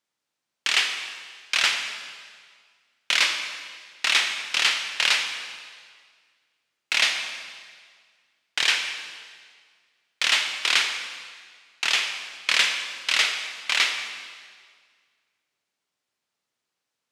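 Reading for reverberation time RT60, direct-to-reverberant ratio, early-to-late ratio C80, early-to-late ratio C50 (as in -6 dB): 1.8 s, 5.5 dB, 7.5 dB, 6.0 dB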